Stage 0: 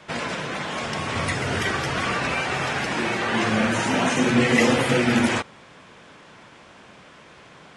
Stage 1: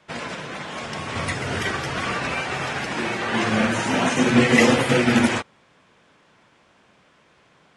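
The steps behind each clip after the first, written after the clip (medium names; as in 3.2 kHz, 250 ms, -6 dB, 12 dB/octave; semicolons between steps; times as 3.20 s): upward expansion 1.5:1, over -42 dBFS; trim +3.5 dB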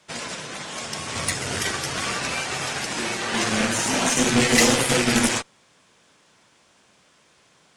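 valve stage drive 13 dB, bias 0.75; tone controls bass -1 dB, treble +14 dB; trim +1.5 dB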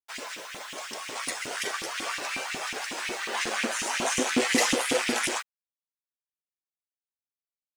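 bit crusher 7-bit; LFO high-pass saw up 5.5 Hz 240–2800 Hz; trim -7.5 dB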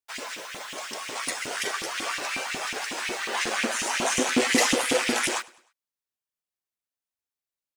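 feedback delay 102 ms, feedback 43%, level -23 dB; trim +2 dB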